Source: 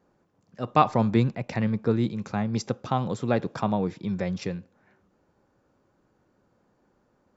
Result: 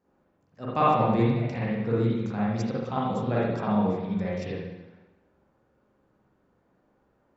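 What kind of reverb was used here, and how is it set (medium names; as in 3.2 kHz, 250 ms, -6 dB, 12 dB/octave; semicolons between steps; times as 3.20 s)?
spring tank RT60 1 s, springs 43/58 ms, chirp 35 ms, DRR -7.5 dB; trim -8.5 dB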